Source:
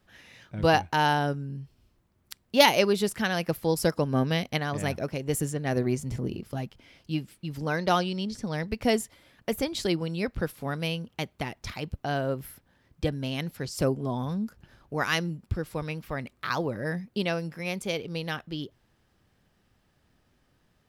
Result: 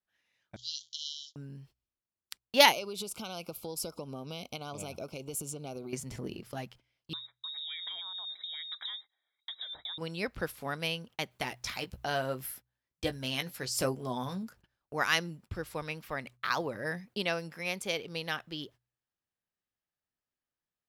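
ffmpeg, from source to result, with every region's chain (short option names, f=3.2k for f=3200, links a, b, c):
-filter_complex "[0:a]asettb=1/sr,asplit=3[a][b][c];[a]atrim=end=0.564[d];[b]atrim=start=0.56:end=1.36,asetpts=PTS-STARTPTS,afade=t=in:d=0.004:c=qsin,afade=t=out:st=0.796:d=0.004:c=qsin,aeval=exprs='val(0)+0.5*0.02*sgn(val(0))':c=same,deesser=0.55,asuperpass=centerf=4800:order=20:qfactor=1.2[e];[c]atrim=start=1.356[f];[d][e]acrossfade=d=0.004:c1=hsin:c2=qsin[g];[g][f]acrossfade=d=0.004:c1=qsin:c2=hsin,asettb=1/sr,asplit=3[h][i][j];[h]atrim=end=2.724[k];[i]atrim=start=2.72:end=5.93,asetpts=PTS-STARTPTS,afade=t=in:d=0.004:c=qsin,afade=t=out:st=3.206:d=0.004:c=qsin,equalizer=f=1.5k:w=1.1:g=-5,acompressor=threshold=-29dB:ratio=10:attack=3.2:release=140:knee=1:detection=peak,asuperstop=centerf=1800:order=8:qfactor=2.5[l];[j]atrim=start=5.926[m];[k][l]acrossfade=d=0.004:c1=hsin:c2=qsin[n];[n][m]acrossfade=d=0.004:c1=qsin:c2=hsin,asettb=1/sr,asplit=3[o][p][q];[o]atrim=end=7.134[r];[p]atrim=start=7.13:end=9.98,asetpts=PTS-STARTPTS,afade=t=in:d=0.004:c=qsin,afade=t=out:st=2.846:d=0.004:c=qsin,asuperstop=centerf=1100:order=20:qfactor=1.5,acompressor=threshold=-36dB:ratio=16:attack=3.2:release=140:knee=1:detection=peak,lowpass=f=3.3k:t=q:w=0.5098,lowpass=f=3.3k:t=q:w=0.6013,lowpass=f=3.3k:t=q:w=0.9,lowpass=f=3.3k:t=q:w=2.563,afreqshift=-3900[s];[q]atrim=start=9.976[t];[r][s]acrossfade=d=0.004:c1=hsin:c2=qsin[u];[u][t]acrossfade=d=0.004:c1=qsin:c2=hsin,asettb=1/sr,asplit=3[v][w][x];[v]atrim=end=11.314[y];[w]atrim=start=11.31:end=14.43,asetpts=PTS-STARTPTS,afade=t=in:d=0.004:c=qsin,afade=t=out:st=3.116:d=0.004:c=qsin,highshelf=f=4.2k:g=5,asplit=2[z][aa];[aa]adelay=16,volume=-8dB[ab];[z][ab]amix=inputs=2:normalize=0,atrim=end_sample=137592[ac];[x]atrim=start=14.426[ad];[y][ac]acrossfade=d=0.004:c1=hsin:c2=qsin[ae];[ae][ad]acrossfade=d=0.004:c1=qsin:c2=hsin,agate=range=-24dB:threshold=-47dB:ratio=16:detection=peak,lowshelf=f=410:g=-11,bandreject=f=61.35:t=h:w=4,bandreject=f=122.7:t=h:w=4"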